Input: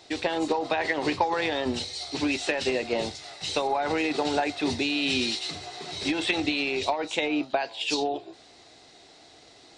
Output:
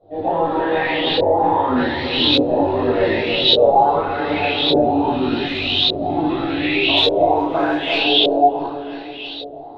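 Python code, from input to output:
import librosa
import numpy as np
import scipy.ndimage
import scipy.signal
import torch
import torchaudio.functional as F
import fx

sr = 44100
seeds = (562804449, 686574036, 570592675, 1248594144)

p1 = fx.air_absorb(x, sr, metres=270.0)
p2 = fx.rider(p1, sr, range_db=4, speed_s=0.5)
p3 = p2 + fx.echo_feedback(p2, sr, ms=331, feedback_pct=58, wet_db=-4, dry=0)
p4 = fx.room_shoebox(p3, sr, seeds[0], volume_m3=560.0, walls='mixed', distance_m=6.5)
p5 = fx.tube_stage(p4, sr, drive_db=13.0, bias=0.6, at=(5.46, 6.02))
p6 = fx.quant_float(p5, sr, bits=2, at=(6.97, 7.99))
p7 = fx.filter_lfo_lowpass(p6, sr, shape='saw_up', hz=0.85, low_hz=510.0, high_hz=3800.0, q=5.1)
p8 = fx.high_shelf_res(p7, sr, hz=2800.0, db=7.0, q=3.0)
p9 = fx.detune_double(p8, sr, cents=12)
y = p9 * 10.0 ** (-3.5 / 20.0)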